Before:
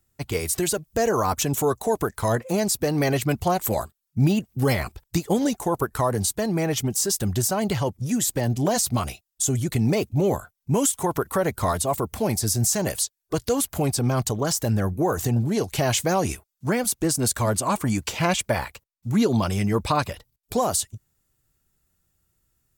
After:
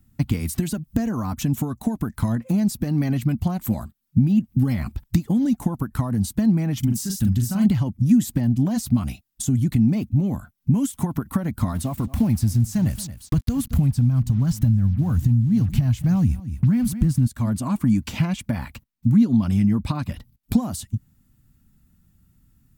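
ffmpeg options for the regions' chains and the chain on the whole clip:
-filter_complex "[0:a]asettb=1/sr,asplit=3[a][b][c];[a]atrim=end=6.794[d];[b]atrim=start=6.79:end=7.66,asetpts=PTS-STARTPTS,afade=t=in:d=0.004:c=qsin,afade=t=out:st=0.866:d=0.004:c=qsin,equalizer=f=520:w=0.48:g=-10,asplit=2[e][f];[f]adelay=42,volume=-5dB[g];[e][g]amix=inputs=2:normalize=0,atrim=end_sample=38367[h];[c]atrim=start=7.656[i];[d][h]acrossfade=d=0.004:c1=hsin:c2=qsin[j];[j][i]acrossfade=d=0.004:c1=qsin:c2=hsin,asettb=1/sr,asplit=3[k][l][m];[k]atrim=end=11.754[n];[l]atrim=start=11.75:end=17.27,asetpts=PTS-STARTPTS,afade=t=in:d=0.004:c=qsin,afade=t=out:st=5.516:d=0.004:c=qsin,asubboost=boost=10:cutoff=130,acrusher=bits=5:mix=0:aa=0.5,aecho=1:1:223:0.0944,atrim=end_sample=243432[o];[m]atrim=start=17.266[p];[n][o]acrossfade=d=0.004:c1=hsin:c2=qsin[q];[q][p]acrossfade=d=0.004:c1=qsin:c2=hsin,equalizer=f=7.2k:t=o:w=1.3:g=-5,acompressor=threshold=-32dB:ratio=12,lowshelf=f=320:t=q:w=3:g=9.5,volume=4.5dB"

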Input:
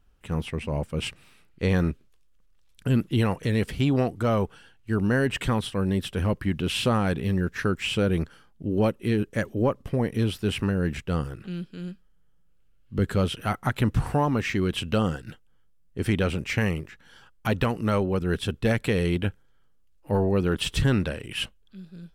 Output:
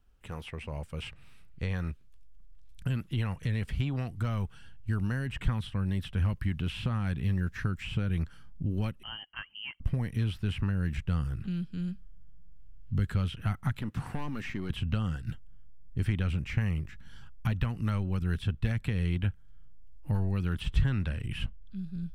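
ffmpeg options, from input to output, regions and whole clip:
-filter_complex "[0:a]asettb=1/sr,asplit=3[a][b][c];[a]atrim=end=9.034[d];[b]atrim=start=9.03:end=9.8,asetpts=PTS-STARTPTS,afade=t=in:d=0.004:c=qsin,afade=t=out:st=0.766:d=0.004:c=qsin,highpass=f=720:p=1,lowpass=f=2.8k:t=q:w=0.5098,lowpass=f=2.8k:t=q:w=0.6013,lowpass=f=2.8k:t=q:w=0.9,lowpass=f=2.8k:t=q:w=2.563,afreqshift=-3300[e];[c]atrim=start=9.796[f];[d][e]acrossfade=d=0.004:c1=hsin:c2=qsin[g];[g][f]acrossfade=d=0.004:c1=qsin:c2=hsin,asettb=1/sr,asplit=3[h][i][j];[h]atrim=end=13.794[k];[i]atrim=start=13.79:end=14.7,asetpts=PTS-STARTPTS,afade=t=in:d=0.004:c=qsin,afade=t=out:st=0.906:d=0.004:c=qsin,highpass=250,aeval=exprs='(tanh(11.2*val(0)+0.25)-tanh(0.25))/11.2':c=same[l];[j]atrim=start=14.696[m];[k][l]acrossfade=d=0.004:c1=hsin:c2=qsin[n];[n][m]acrossfade=d=0.004:c1=qsin:c2=hsin,acrossover=split=450|1400|3400[o][p][q][r];[o]acompressor=threshold=-38dB:ratio=4[s];[p]acompressor=threshold=-37dB:ratio=4[t];[q]acompressor=threshold=-37dB:ratio=4[u];[r]acompressor=threshold=-53dB:ratio=4[v];[s][t][u][v]amix=inputs=4:normalize=0,asubboost=boost=10.5:cutoff=140,volume=-4.5dB"

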